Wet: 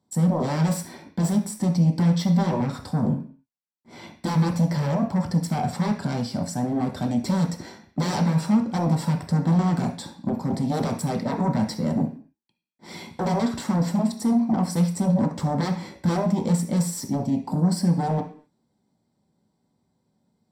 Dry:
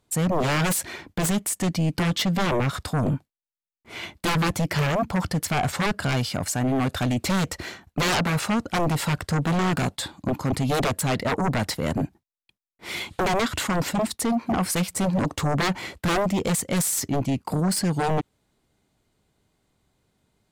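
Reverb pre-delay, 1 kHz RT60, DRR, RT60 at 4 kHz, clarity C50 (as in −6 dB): 3 ms, 0.45 s, 0.5 dB, can't be measured, 10.0 dB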